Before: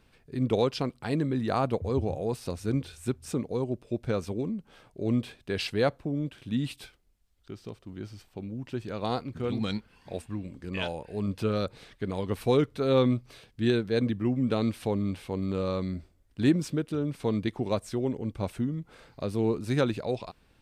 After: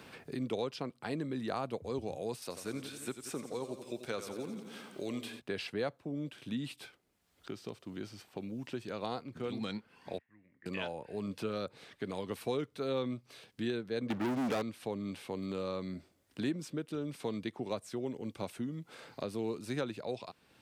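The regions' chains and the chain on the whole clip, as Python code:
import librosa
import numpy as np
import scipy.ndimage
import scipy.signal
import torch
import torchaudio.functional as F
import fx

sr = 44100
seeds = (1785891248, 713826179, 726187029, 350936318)

y = fx.chain(x, sr, fx.tilt_eq(slope=3.0),
    fx.echo_warbled(ms=87, feedback_pct=62, rate_hz=2.8, cents=69, wet_db=-11), at=(2.42, 5.4))
y = fx.chain(y, sr, fx.lowpass_res(hz=1900.0, q=14.0),
    fx.gate_flip(shuts_db=-38.0, range_db=-26), at=(10.18, 10.66))
y = fx.chain(y, sr, fx.bass_treble(bass_db=-8, treble_db=-14),
    fx.leveller(passes=5), at=(14.1, 14.62))
y = scipy.signal.sosfilt(scipy.signal.butter(2, 110.0, 'highpass', fs=sr, output='sos'), y)
y = fx.low_shelf(y, sr, hz=170.0, db=-7.0)
y = fx.band_squash(y, sr, depth_pct=70)
y = y * librosa.db_to_amplitude(-7.0)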